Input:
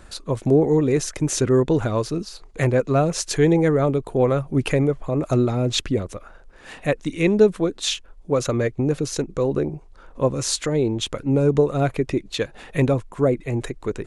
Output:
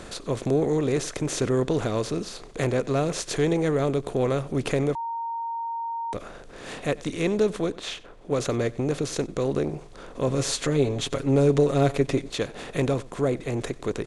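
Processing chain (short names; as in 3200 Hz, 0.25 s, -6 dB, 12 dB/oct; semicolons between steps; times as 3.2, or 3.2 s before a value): per-bin compression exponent 0.6; 7.72–8.31 tone controls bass -4 dB, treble -10 dB; 10.27–12.3 comb 7.3 ms, depth 74%; outdoor echo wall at 16 m, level -21 dB; 4.95–6.13 bleep 924 Hz -19 dBFS; gain -8.5 dB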